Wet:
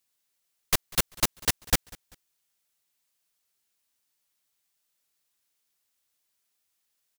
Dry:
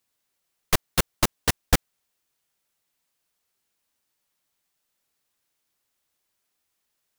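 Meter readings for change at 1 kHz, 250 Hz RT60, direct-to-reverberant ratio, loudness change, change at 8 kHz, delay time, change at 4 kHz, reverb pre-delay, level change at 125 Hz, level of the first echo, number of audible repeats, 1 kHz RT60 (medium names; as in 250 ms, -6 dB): -5.0 dB, no reverb, no reverb, -1.5 dB, +0.5 dB, 195 ms, -0.5 dB, no reverb, -6.5 dB, -23.5 dB, 2, no reverb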